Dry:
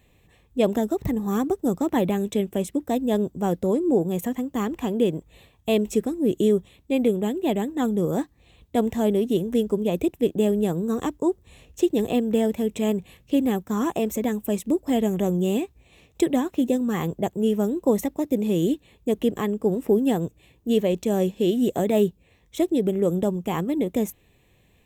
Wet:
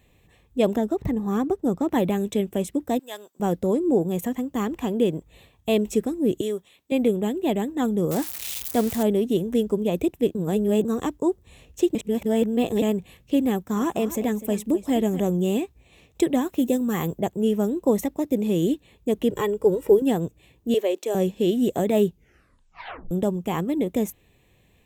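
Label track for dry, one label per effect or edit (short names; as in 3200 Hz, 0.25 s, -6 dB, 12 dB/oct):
0.760000	1.910000	high shelf 4600 Hz -9.5 dB
2.990000	3.400000	HPF 1200 Hz
6.410000	6.920000	HPF 850 Hz 6 dB/oct
8.110000	9.030000	switching spikes of -20.5 dBFS
10.350000	10.850000	reverse
11.950000	12.820000	reverse
13.510000	15.200000	echo 0.25 s -14 dB
16.410000	17.200000	high shelf 10000 Hz +11 dB
19.300000	20.020000	comb 2.1 ms, depth 89%
20.740000	21.150000	steep high-pass 320 Hz
22.080000	22.080000	tape stop 1.03 s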